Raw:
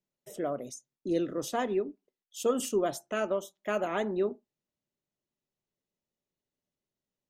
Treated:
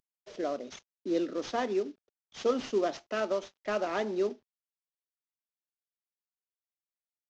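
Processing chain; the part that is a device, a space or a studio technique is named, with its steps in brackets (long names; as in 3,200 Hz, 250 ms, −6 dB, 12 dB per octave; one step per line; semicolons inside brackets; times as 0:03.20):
early wireless headset (high-pass filter 210 Hz 24 dB per octave; variable-slope delta modulation 32 kbit/s)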